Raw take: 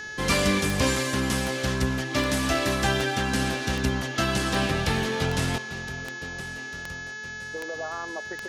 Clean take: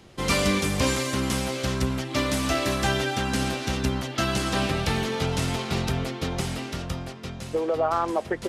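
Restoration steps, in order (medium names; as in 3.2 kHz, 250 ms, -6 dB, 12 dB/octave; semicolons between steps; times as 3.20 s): de-click; de-hum 432.4 Hz, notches 16; band-stop 1.7 kHz, Q 30; trim 0 dB, from 5.58 s +11 dB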